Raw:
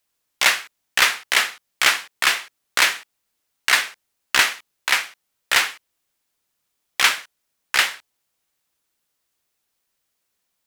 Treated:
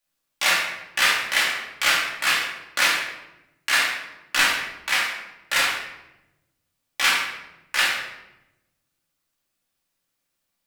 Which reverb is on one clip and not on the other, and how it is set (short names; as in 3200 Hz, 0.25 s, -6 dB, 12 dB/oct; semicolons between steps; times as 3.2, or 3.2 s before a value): shoebox room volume 360 m³, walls mixed, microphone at 2.4 m; gain -8 dB